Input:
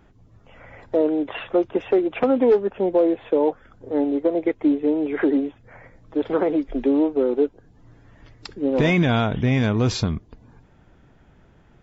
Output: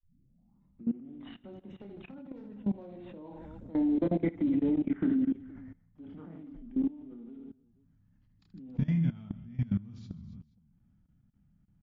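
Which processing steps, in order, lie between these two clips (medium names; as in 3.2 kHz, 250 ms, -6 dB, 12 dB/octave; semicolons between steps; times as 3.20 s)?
tape start-up on the opening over 1.34 s; Doppler pass-by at 4.28 s, 20 m/s, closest 11 m; resonant low shelf 290 Hz +13 dB, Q 3; on a send: reverse bouncing-ball echo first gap 30 ms, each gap 1.6×, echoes 5; on the sum: level held to a coarse grid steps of 20 dB; trim -6 dB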